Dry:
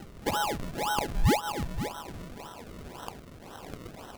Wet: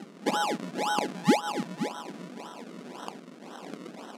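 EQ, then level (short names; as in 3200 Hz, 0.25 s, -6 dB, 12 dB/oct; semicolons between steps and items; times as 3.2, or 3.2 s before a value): brick-wall FIR high-pass 160 Hz; LPF 8600 Hz 12 dB/oct; bell 250 Hz +4.5 dB 0.94 oct; +1.0 dB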